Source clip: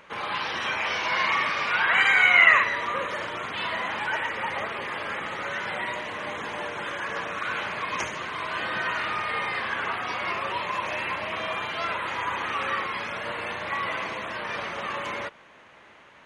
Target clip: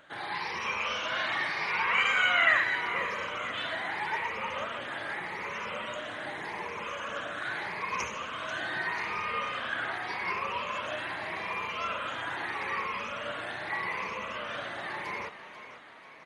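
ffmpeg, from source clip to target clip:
-filter_complex "[0:a]afftfilt=real='re*pow(10,11/40*sin(2*PI*(0.83*log(max(b,1)*sr/1024/100)/log(2)-(0.82)*(pts-256)/sr)))':imag='im*pow(10,11/40*sin(2*PI*(0.83*log(max(b,1)*sr/1024/100)/log(2)-(0.82)*(pts-256)/sr)))':win_size=1024:overlap=0.75,asplit=7[a][b][c][d][e][f][g];[b]adelay=490,afreqshift=33,volume=-12dB[h];[c]adelay=980,afreqshift=66,volume=-17dB[i];[d]adelay=1470,afreqshift=99,volume=-22.1dB[j];[e]adelay=1960,afreqshift=132,volume=-27.1dB[k];[f]adelay=2450,afreqshift=165,volume=-32.1dB[l];[g]adelay=2940,afreqshift=198,volume=-37.2dB[m];[a][h][i][j][k][l][m]amix=inputs=7:normalize=0,volume=-6.5dB"

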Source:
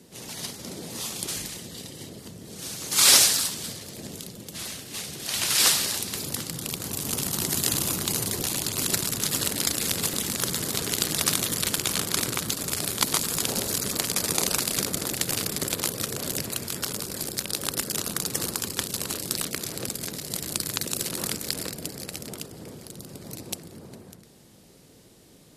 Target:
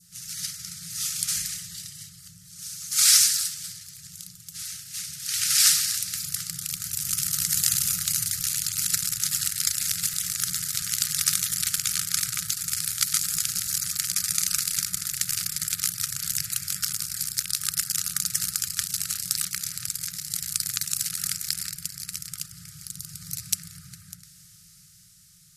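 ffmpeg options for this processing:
-af "highshelf=f=4.3k:t=q:w=1.5:g=7,dynaudnorm=f=140:g=17:m=13.5dB,adynamicequalizer=threshold=0.01:dfrequency=2000:dqfactor=0.91:tfrequency=2000:tqfactor=0.91:attack=5:release=100:ratio=0.375:range=2.5:mode=boostabove:tftype=bell,afftfilt=real='re*(1-between(b*sr/4096,190,1200))':imag='im*(1-between(b*sr/4096,190,1200))':win_size=4096:overlap=0.75,volume=-4dB"

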